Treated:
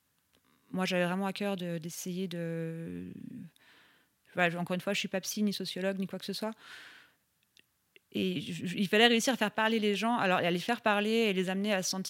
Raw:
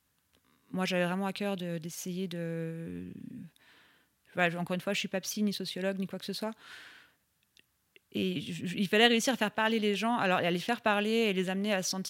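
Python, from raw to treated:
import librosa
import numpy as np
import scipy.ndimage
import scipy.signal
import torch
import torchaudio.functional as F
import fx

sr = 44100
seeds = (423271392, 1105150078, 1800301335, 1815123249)

y = scipy.signal.sosfilt(scipy.signal.butter(2, 78.0, 'highpass', fs=sr, output='sos'), x)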